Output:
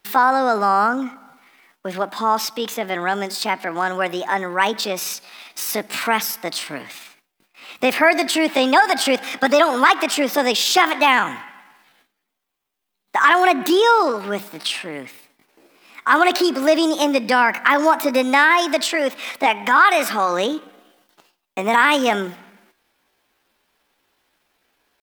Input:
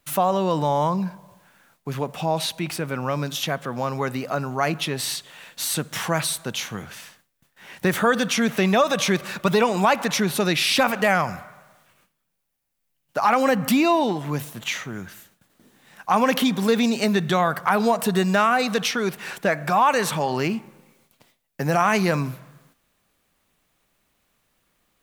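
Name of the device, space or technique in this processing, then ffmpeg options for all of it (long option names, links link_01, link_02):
chipmunk voice: -af "asetrate=60591,aresample=44100,atempo=0.727827,bass=frequency=250:gain=-12,treble=frequency=4000:gain=-5,volume=5.5dB"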